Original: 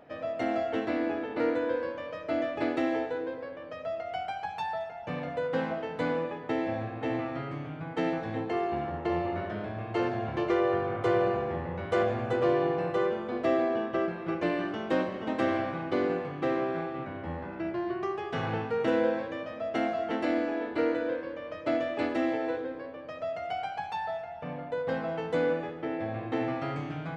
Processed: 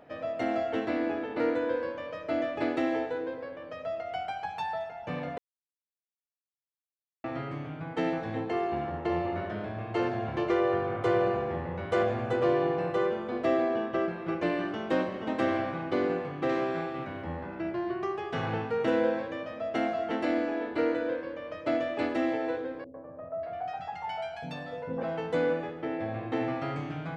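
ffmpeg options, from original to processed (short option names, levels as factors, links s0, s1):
-filter_complex "[0:a]asettb=1/sr,asplit=3[s0][s1][s2];[s0]atrim=end=16.494[s3];[s1]atrim=start=16.49:end=17.24,asetpts=PTS-STARTPTS,afade=t=in:d=0.004:c=qsin,afade=t=out:st=0.746:d=0.004:c=qsin,highshelf=f=3700:g=10.5[s4];[s2]atrim=start=17.236[s5];[s3][s4]acrossfade=d=0.004:c1=hsin:c2=qsin[s6];[s6][s5]acrossfade=d=0.004:c1=qsin:c2=hsin,asettb=1/sr,asplit=3[s7][s8][s9];[s7]atrim=end=22.844[s10];[s8]atrim=start=22.84:end=25.03,asetpts=PTS-STARTPTS,afade=t=in:d=0.004:c=qsin,afade=t=out:st=2.186:d=0.004:c=qsin,acrossover=split=430|1300[s11][s12][s13];[s12]adelay=100[s14];[s13]adelay=590[s15];[s11][s14][s15]amix=inputs=3:normalize=0,atrim=end_sample=96579[s16];[s9]atrim=start=25.026[s17];[s10][s16]acrossfade=d=0.004:c1=hsin:c2=qsin[s18];[s18][s17]acrossfade=d=0.004:c1=qsin:c2=hsin,asplit=3[s19][s20][s21];[s19]atrim=end=5.38,asetpts=PTS-STARTPTS,afade=t=out:st=5.376:d=0.004:c=hsin[s22];[s20]atrim=start=5.38:end=7.24,asetpts=PTS-STARTPTS,volume=0[s23];[s21]atrim=start=7.24,asetpts=PTS-STARTPTS,afade=t=in:d=0.004:c=hsin[s24];[s22][s23][s24]concat=n=3:v=0:a=1"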